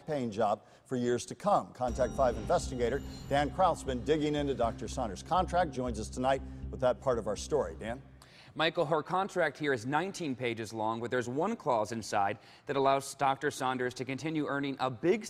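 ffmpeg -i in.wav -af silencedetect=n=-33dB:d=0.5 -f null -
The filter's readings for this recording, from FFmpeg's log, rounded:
silence_start: 7.94
silence_end: 8.59 | silence_duration: 0.65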